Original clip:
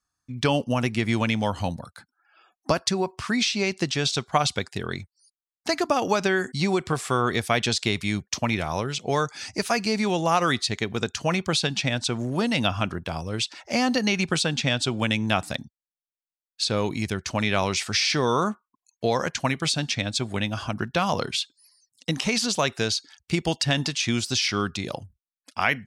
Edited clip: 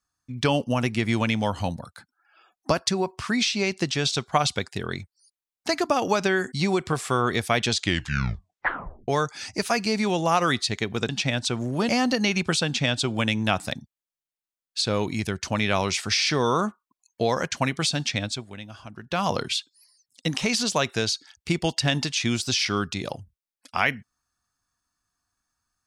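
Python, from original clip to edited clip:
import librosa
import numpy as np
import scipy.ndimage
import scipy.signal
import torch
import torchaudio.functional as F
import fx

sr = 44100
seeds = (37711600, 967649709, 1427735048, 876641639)

y = fx.edit(x, sr, fx.tape_stop(start_s=7.71, length_s=1.37),
    fx.cut(start_s=11.09, length_s=0.59),
    fx.cut(start_s=12.48, length_s=1.24),
    fx.fade_down_up(start_s=20.06, length_s=1.01, db=-12.5, fade_s=0.23), tone=tone)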